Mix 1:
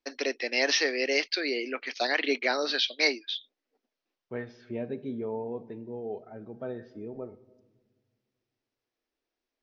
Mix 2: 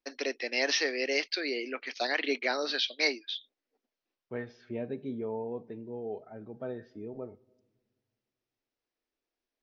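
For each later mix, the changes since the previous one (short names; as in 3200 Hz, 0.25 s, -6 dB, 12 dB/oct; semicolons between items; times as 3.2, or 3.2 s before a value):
first voice -3.0 dB; second voice: send -8.5 dB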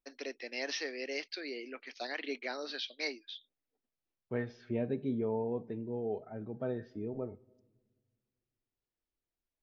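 first voice -9.5 dB; master: add low shelf 210 Hz +7 dB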